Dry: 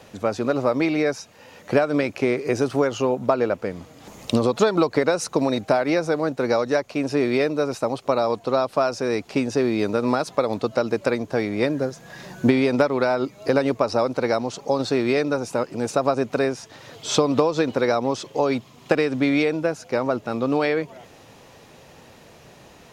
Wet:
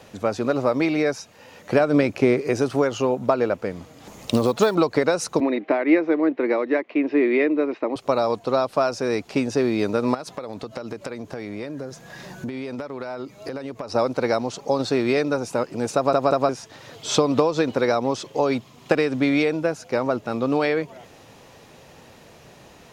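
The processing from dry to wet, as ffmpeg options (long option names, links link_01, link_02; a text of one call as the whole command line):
ffmpeg -i in.wav -filter_complex "[0:a]asettb=1/sr,asplit=3[link_01][link_02][link_03];[link_01]atrim=end=1.804[link_04];[link_02]atrim=start=1.8:end=2.41,asetpts=PTS-STARTPTS,afade=type=in:duration=0.004:curve=qsin,afade=type=out:start_time=0.606:duration=0.004:curve=qsin,lowshelf=frequency=490:gain=5.5[link_05];[link_03]atrim=start=2.406[link_06];[link_04][link_05]acrossfade=duration=0.004:curve1=hsin:curve2=qsin[link_07];[link_07][link_06]acrossfade=duration=0.004:curve1=qsin:curve2=hsin,asettb=1/sr,asplit=3[link_08][link_09][link_10];[link_08]atrim=end=4.214[link_11];[link_09]atrim=start=4.21:end=4.75,asetpts=PTS-STARTPTS,afade=type=in:duration=0.004:curve=qsin,afade=type=out:start_time=0.536:duration=0.004:curve=qsin,acrusher=bits=7:mode=log:mix=0:aa=0.000001[link_12];[link_10]atrim=start=4.746[link_13];[link_11][link_12]acrossfade=duration=0.004:curve1=hsin:curve2=qsin[link_14];[link_14][link_13]acrossfade=duration=0.004:curve1=qsin:curve2=hsin,asettb=1/sr,asplit=3[link_15][link_16][link_17];[link_15]atrim=end=5.404[link_18];[link_16]atrim=start=5.4:end=7.96,asetpts=PTS-STARTPTS,afade=type=in:duration=0.004:curve=qsin,afade=type=out:start_time=2.556:duration=0.004:curve=qsin,highpass=frequency=250:width=0.5412,highpass=frequency=250:width=1.3066,equalizer=frequency=320:width_type=q:width=4:gain=9,equalizer=frequency=540:width_type=q:width=4:gain=-3,equalizer=frequency=780:width_type=q:width=4:gain=-5,equalizer=frequency=1400:width_type=q:width=4:gain=-6,equalizer=frequency=2000:width_type=q:width=4:gain=7,lowpass=frequency=2900:width=0.5412,lowpass=frequency=2900:width=1.3066[link_19];[link_17]atrim=start=7.956[link_20];[link_18][link_19]acrossfade=duration=0.004:curve1=hsin:curve2=qsin[link_21];[link_21][link_20]acrossfade=duration=0.004:curve1=qsin:curve2=hsin,asettb=1/sr,asplit=3[link_22][link_23][link_24];[link_22]atrim=end=10.144[link_25];[link_23]atrim=start=10.14:end=13.95,asetpts=PTS-STARTPTS,afade=type=in:duration=0.004:curve=qsin,afade=type=out:start_time=3.806:duration=0.004:curve=qsin,acompressor=threshold=-28dB:ratio=6:attack=3.2:release=140:knee=1:detection=peak[link_26];[link_24]atrim=start=13.946[link_27];[link_25][link_26]acrossfade=duration=0.004:curve1=hsin:curve2=qsin[link_28];[link_28][link_27]acrossfade=duration=0.004:curve1=qsin:curve2=hsin,asplit=4[link_29][link_30][link_31][link_32];[link_29]atrim=end=16.132[link_33];[link_30]atrim=start=15.948:end=16.132[link_34];[link_31]atrim=start=15.948:end=16.132[link_35];[link_32]atrim=start=16.488[link_36];[link_33][link_34]acrossfade=duration=0.004:curve1=hsin:curve2=hsin[link_37];[link_37][link_35]acrossfade=duration=0.004:curve1=hsin:curve2=hsin[link_38];[link_38][link_36]acrossfade=duration=0.004:curve1=hsin:curve2=hsin" out.wav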